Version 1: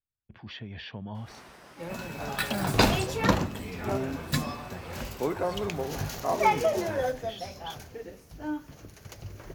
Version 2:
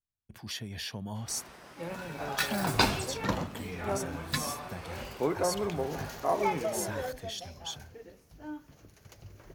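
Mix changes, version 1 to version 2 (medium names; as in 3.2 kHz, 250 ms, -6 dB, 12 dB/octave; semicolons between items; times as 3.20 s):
speech: remove low-pass 3.3 kHz 24 dB/octave; second sound -8.0 dB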